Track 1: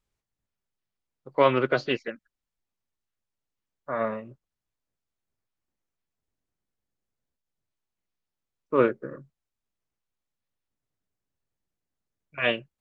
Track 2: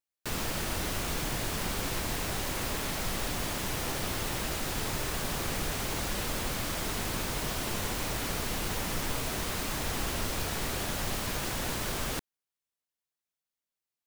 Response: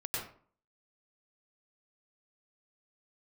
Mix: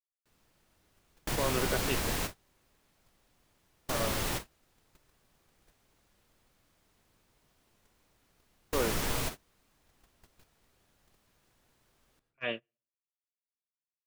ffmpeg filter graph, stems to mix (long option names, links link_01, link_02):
-filter_complex "[0:a]alimiter=limit=-14dB:level=0:latency=1:release=27,volume=-8.5dB,asplit=3[link_01][link_02][link_03];[link_02]volume=-22.5dB[link_04];[1:a]volume=0dB,asplit=2[link_05][link_06];[link_06]volume=-23.5dB[link_07];[link_03]apad=whole_len=620184[link_08];[link_05][link_08]sidechaingate=range=-11dB:threshold=-59dB:ratio=16:detection=peak[link_09];[2:a]atrim=start_sample=2205[link_10];[link_04][link_07]amix=inputs=2:normalize=0[link_11];[link_11][link_10]afir=irnorm=-1:irlink=0[link_12];[link_01][link_09][link_12]amix=inputs=3:normalize=0,agate=range=-28dB:threshold=-36dB:ratio=16:detection=peak"